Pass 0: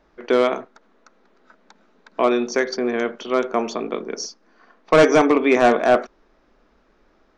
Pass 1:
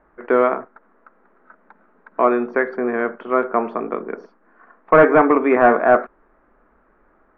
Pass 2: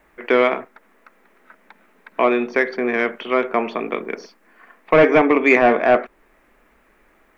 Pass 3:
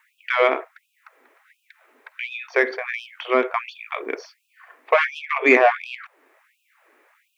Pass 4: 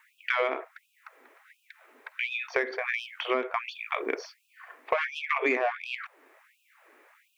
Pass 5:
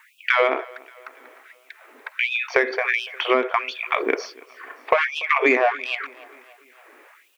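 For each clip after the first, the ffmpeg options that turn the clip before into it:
ffmpeg -i in.wav -af "lowpass=frequency=1900:width=0.5412,lowpass=frequency=1900:width=1.3066,equalizer=frequency=1300:width_type=o:width=1.5:gain=5.5" out.wav
ffmpeg -i in.wav -filter_complex "[0:a]acrossover=split=820[link_01][link_02];[link_02]alimiter=limit=-14dB:level=0:latency=1:release=403[link_03];[link_01][link_03]amix=inputs=2:normalize=0,aexciter=amount=6.6:drive=7.6:freq=2100" out.wav
ffmpeg -i in.wav -af "afftfilt=real='re*gte(b*sr/1024,240*pow(2500/240,0.5+0.5*sin(2*PI*1.4*pts/sr)))':imag='im*gte(b*sr/1024,240*pow(2500/240,0.5+0.5*sin(2*PI*1.4*pts/sr)))':win_size=1024:overlap=0.75" out.wav
ffmpeg -i in.wav -af "acompressor=threshold=-24dB:ratio=6" out.wav
ffmpeg -i in.wav -af "aecho=1:1:289|578|867|1156:0.0668|0.0361|0.0195|0.0105,volume=8.5dB" out.wav

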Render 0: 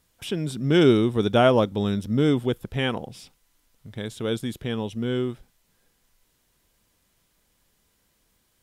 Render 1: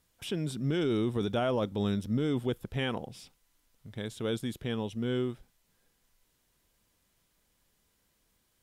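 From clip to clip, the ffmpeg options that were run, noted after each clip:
ffmpeg -i in.wav -af "alimiter=limit=-16.5dB:level=0:latency=1:release=14,volume=-5dB" out.wav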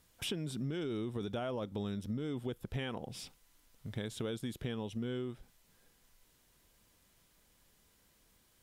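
ffmpeg -i in.wav -af "acompressor=threshold=-39dB:ratio=8,volume=4dB" out.wav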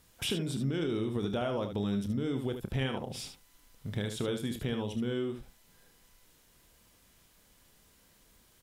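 ffmpeg -i in.wav -af "aecho=1:1:30|75:0.299|0.398,volume=4.5dB" out.wav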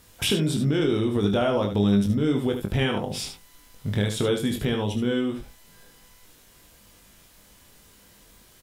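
ffmpeg -i in.wav -filter_complex "[0:a]asplit=2[link_01][link_02];[link_02]adelay=20,volume=-6dB[link_03];[link_01][link_03]amix=inputs=2:normalize=0,volume=8.5dB" out.wav

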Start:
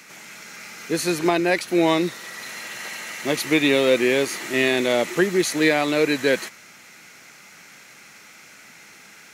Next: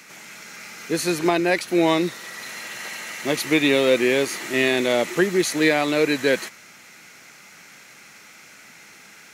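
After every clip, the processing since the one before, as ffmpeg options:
ffmpeg -i in.wav -af anull out.wav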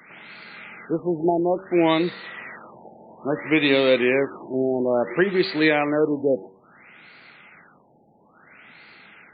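ffmpeg -i in.wav -af "bandreject=frequency=95.48:width_type=h:width=4,bandreject=frequency=190.96:width_type=h:width=4,bandreject=frequency=286.44:width_type=h:width=4,bandreject=frequency=381.92:width_type=h:width=4,bandreject=frequency=477.4:width_type=h:width=4,bandreject=frequency=572.88:width_type=h:width=4,afftfilt=real='re*lt(b*sr/1024,860*pow(4800/860,0.5+0.5*sin(2*PI*0.59*pts/sr)))':imag='im*lt(b*sr/1024,860*pow(4800/860,0.5+0.5*sin(2*PI*0.59*pts/sr)))':win_size=1024:overlap=0.75" out.wav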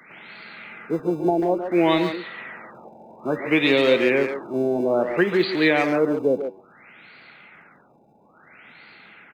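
ffmpeg -i in.wav -filter_complex "[0:a]acrossover=split=150[link_01][link_02];[link_01]acrusher=samples=35:mix=1:aa=0.000001[link_03];[link_03][link_02]amix=inputs=2:normalize=0,asplit=2[link_04][link_05];[link_05]adelay=140,highpass=300,lowpass=3400,asoftclip=type=hard:threshold=-15.5dB,volume=-7dB[link_06];[link_04][link_06]amix=inputs=2:normalize=0" out.wav

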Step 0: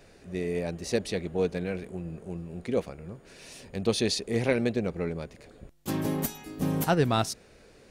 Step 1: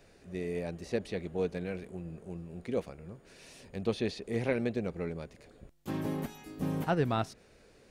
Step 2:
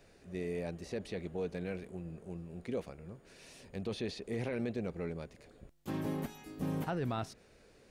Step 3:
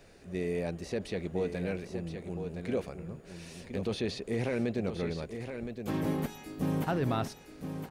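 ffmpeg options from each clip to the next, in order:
ffmpeg -i in.wav -filter_complex "[0:a]acrossover=split=3200[link_01][link_02];[link_02]acompressor=threshold=-47dB:ratio=4:attack=1:release=60[link_03];[link_01][link_03]amix=inputs=2:normalize=0,volume=-5dB" out.wav
ffmpeg -i in.wav -af "alimiter=level_in=1.5dB:limit=-24dB:level=0:latency=1:release=14,volume=-1.5dB,volume=-2dB" out.wav
ffmpeg -i in.wav -af "aecho=1:1:1017:0.398,volume=5dB" out.wav

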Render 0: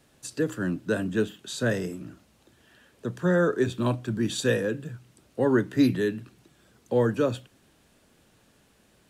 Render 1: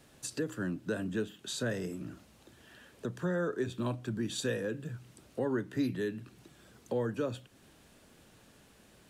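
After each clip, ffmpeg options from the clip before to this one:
ffmpeg -i in.wav -af "acompressor=threshold=-40dB:ratio=2,volume=1.5dB" out.wav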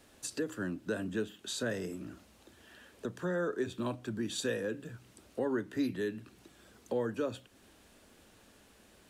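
ffmpeg -i in.wav -af "equalizer=frequency=140:width_type=o:width=0.41:gain=-13" out.wav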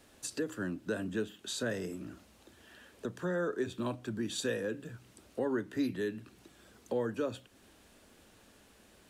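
ffmpeg -i in.wav -af anull out.wav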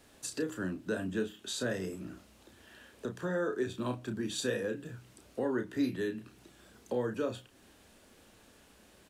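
ffmpeg -i in.wav -filter_complex "[0:a]asplit=2[link_01][link_02];[link_02]adelay=32,volume=-7dB[link_03];[link_01][link_03]amix=inputs=2:normalize=0" out.wav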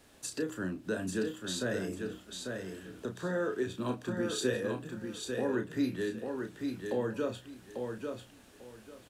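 ffmpeg -i in.wav -af "aecho=1:1:844|1688|2532:0.562|0.118|0.0248" out.wav

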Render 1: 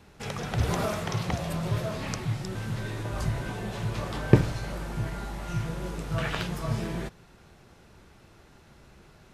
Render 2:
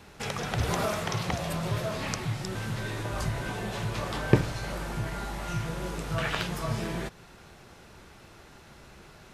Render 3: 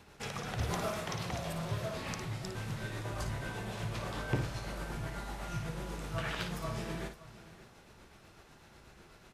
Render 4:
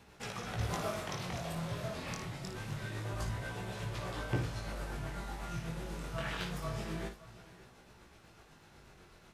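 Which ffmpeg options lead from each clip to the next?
ffmpeg -i in.wav -filter_complex "[0:a]lowshelf=frequency=420:gain=-5,asplit=2[link_01][link_02];[link_02]acompressor=threshold=-40dB:ratio=6,volume=0dB[link_03];[link_01][link_03]amix=inputs=2:normalize=0" out.wav
ffmpeg -i in.wav -filter_complex "[0:a]tremolo=f=8.1:d=0.44,asoftclip=type=tanh:threshold=-18.5dB,asplit=2[link_01][link_02];[link_02]aecho=0:1:56|569:0.398|0.15[link_03];[link_01][link_03]amix=inputs=2:normalize=0,volume=-5dB" out.wav
ffmpeg -i in.wav -af "flanger=delay=16:depth=7.9:speed=0.26,volume=1.5dB" out.wav

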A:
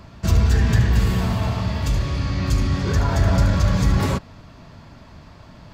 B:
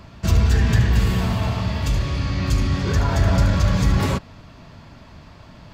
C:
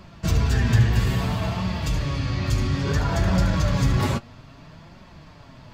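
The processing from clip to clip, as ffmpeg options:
ffmpeg -i in.wav -af "equalizer=frequency=2800:width=1.5:gain=2.5" out.wav
ffmpeg -i in.wav -af "flanger=delay=5.3:depth=3.4:regen=43:speed=0.6:shape=triangular,volume=2dB" out.wav

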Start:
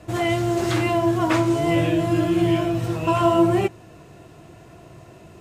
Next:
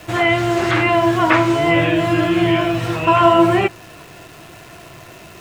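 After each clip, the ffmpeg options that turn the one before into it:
ffmpeg -i in.wav -filter_complex "[0:a]equalizer=frequency=2300:width=0.4:gain=12,acrusher=bits=8:dc=4:mix=0:aa=0.000001,acrossover=split=2500[link_01][link_02];[link_02]acompressor=threshold=-33dB:ratio=4:attack=1:release=60[link_03];[link_01][link_03]amix=inputs=2:normalize=0,volume=1.5dB" out.wav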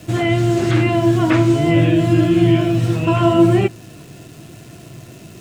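ffmpeg -i in.wav -af "equalizer=frequency=125:width_type=o:width=1:gain=9,equalizer=frequency=250:width_type=o:width=1:gain=8,equalizer=frequency=1000:width_type=o:width=1:gain=-7,equalizer=frequency=2000:width_type=o:width=1:gain=-4,equalizer=frequency=8000:width_type=o:width=1:gain=4,volume=-2.5dB" out.wav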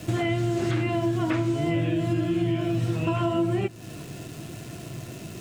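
ffmpeg -i in.wav -af "acompressor=threshold=-24dB:ratio=4" out.wav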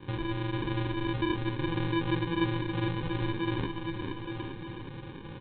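ffmpeg -i in.wav -af "aresample=8000,acrusher=samples=12:mix=1:aa=0.000001,aresample=44100,aecho=1:1:450|855|1220|1548|1843:0.631|0.398|0.251|0.158|0.1,volume=-7.5dB" out.wav

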